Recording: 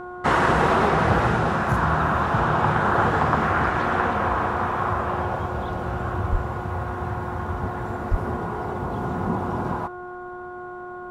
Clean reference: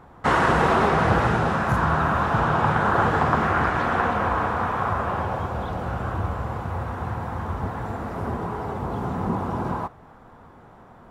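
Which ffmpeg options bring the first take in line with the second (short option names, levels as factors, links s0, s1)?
-filter_complex "[0:a]bandreject=f=360.1:t=h:w=4,bandreject=f=720.2:t=h:w=4,bandreject=f=1080.3:t=h:w=4,bandreject=f=1440.4:t=h:w=4,asplit=3[s0][s1][s2];[s0]afade=t=out:st=6.31:d=0.02[s3];[s1]highpass=f=140:w=0.5412,highpass=f=140:w=1.3066,afade=t=in:st=6.31:d=0.02,afade=t=out:st=6.43:d=0.02[s4];[s2]afade=t=in:st=6.43:d=0.02[s5];[s3][s4][s5]amix=inputs=3:normalize=0,asplit=3[s6][s7][s8];[s6]afade=t=out:st=8.1:d=0.02[s9];[s7]highpass=f=140:w=0.5412,highpass=f=140:w=1.3066,afade=t=in:st=8.1:d=0.02,afade=t=out:st=8.22:d=0.02[s10];[s8]afade=t=in:st=8.22:d=0.02[s11];[s9][s10][s11]amix=inputs=3:normalize=0"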